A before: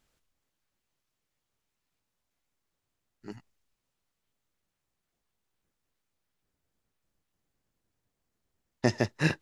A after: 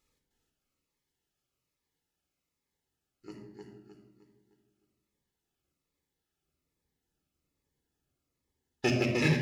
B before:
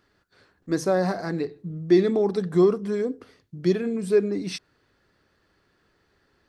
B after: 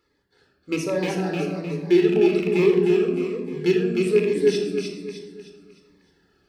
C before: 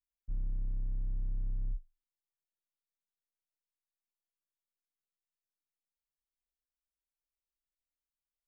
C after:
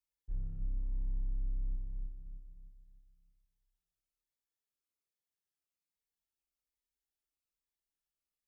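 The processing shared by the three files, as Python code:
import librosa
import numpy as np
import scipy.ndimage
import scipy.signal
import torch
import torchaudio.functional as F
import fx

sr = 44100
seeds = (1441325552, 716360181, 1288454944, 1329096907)

p1 = fx.rattle_buzz(x, sr, strikes_db=-26.0, level_db=-17.0)
p2 = fx.highpass(p1, sr, hz=55.0, slope=6)
p3 = fx.dereverb_blind(p2, sr, rt60_s=0.66)
p4 = fx.peak_eq(p3, sr, hz=110.0, db=-14.0, octaves=0.26)
p5 = fx.rider(p4, sr, range_db=3, speed_s=2.0)
p6 = p5 + fx.echo_feedback(p5, sr, ms=307, feedback_pct=41, wet_db=-4, dry=0)
p7 = fx.room_shoebox(p6, sr, seeds[0], volume_m3=3900.0, walls='furnished', distance_m=4.1)
p8 = fx.notch_cascade(p7, sr, direction='falling', hz=1.2)
y = F.gain(torch.from_numpy(p8), -2.5).numpy()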